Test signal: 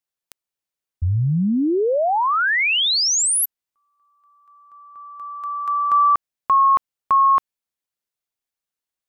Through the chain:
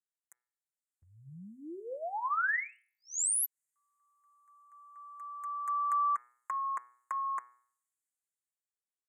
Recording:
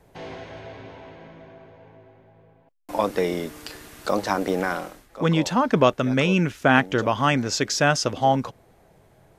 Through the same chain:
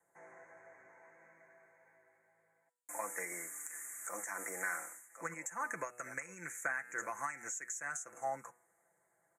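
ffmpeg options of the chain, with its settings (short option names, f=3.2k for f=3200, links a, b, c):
-filter_complex "[0:a]lowpass=5.3k,aderivative,acrossover=split=160|1100|2000[a][b][c][d];[d]dynaudnorm=f=200:g=13:m=15dB[e];[a][b][c][e]amix=inputs=4:normalize=0,aecho=1:1:5.9:0.55,bandreject=f=122.2:t=h:w=4,bandreject=f=244.4:t=h:w=4,bandreject=f=366.6:t=h:w=4,bandreject=f=488.8:t=h:w=4,bandreject=f=611:t=h:w=4,bandreject=f=733.2:t=h:w=4,bandreject=f=855.4:t=h:w=4,bandreject=f=977.6:t=h:w=4,bandreject=f=1.0998k:t=h:w=4,bandreject=f=1.222k:t=h:w=4,bandreject=f=1.3442k:t=h:w=4,bandreject=f=1.4664k:t=h:w=4,bandreject=f=1.5886k:t=h:w=4,bandreject=f=1.7108k:t=h:w=4,bandreject=f=1.833k:t=h:w=4,bandreject=f=1.9552k:t=h:w=4,bandreject=f=2.0774k:t=h:w=4,bandreject=f=2.1996k:t=h:w=4,bandreject=f=2.3218k:t=h:w=4,bandreject=f=2.444k:t=h:w=4,bandreject=f=2.5662k:t=h:w=4,bandreject=f=2.6884k:t=h:w=4,bandreject=f=2.8106k:t=h:w=4,bandreject=f=2.9328k:t=h:w=4,bandreject=f=3.055k:t=h:w=4,bandreject=f=3.1772k:t=h:w=4,bandreject=f=3.2994k:t=h:w=4,bandreject=f=3.4216k:t=h:w=4,bandreject=f=3.5438k:t=h:w=4,bandreject=f=3.666k:t=h:w=4,bandreject=f=3.7882k:t=h:w=4,acompressor=threshold=-26dB:ratio=16:attack=3.5:release=173:knee=1:detection=rms,asuperstop=centerf=3800:order=12:qfactor=0.77"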